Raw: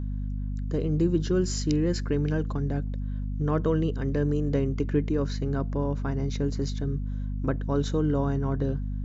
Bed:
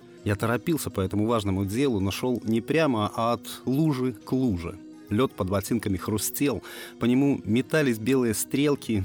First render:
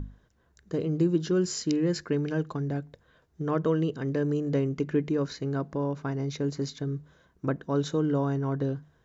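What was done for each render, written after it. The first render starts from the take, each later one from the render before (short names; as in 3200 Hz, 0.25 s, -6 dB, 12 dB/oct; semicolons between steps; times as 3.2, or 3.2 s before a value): notches 50/100/150/200/250 Hz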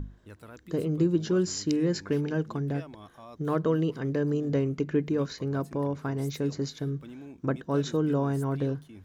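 add bed -22.5 dB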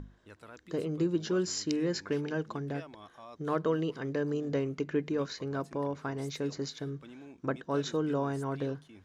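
LPF 7900 Hz 12 dB/oct; low shelf 290 Hz -10 dB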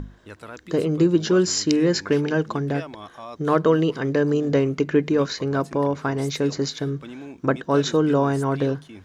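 gain +11.5 dB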